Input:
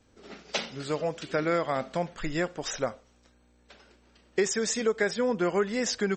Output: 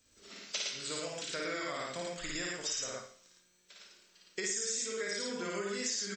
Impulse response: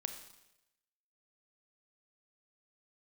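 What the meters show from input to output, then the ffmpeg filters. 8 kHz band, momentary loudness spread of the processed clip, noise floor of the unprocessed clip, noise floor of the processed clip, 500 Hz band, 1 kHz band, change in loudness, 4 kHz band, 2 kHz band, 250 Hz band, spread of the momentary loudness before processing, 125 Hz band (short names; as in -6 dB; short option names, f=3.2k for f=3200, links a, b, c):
0.0 dB, 16 LU, -63 dBFS, -69 dBFS, -12.0 dB, -10.5 dB, -7.0 dB, -1.0 dB, -6.0 dB, -12.5 dB, 7 LU, -13.5 dB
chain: -filter_complex "[0:a]aecho=1:1:55.39|110.8:0.891|0.891,crystalizer=i=8:c=0,equalizer=f=800:t=o:w=0.21:g=-10.5[a];[1:a]atrim=start_sample=2205,asetrate=79380,aresample=44100[b];[a][b]afir=irnorm=-1:irlink=0,acompressor=threshold=-26dB:ratio=5,volume=-7.5dB"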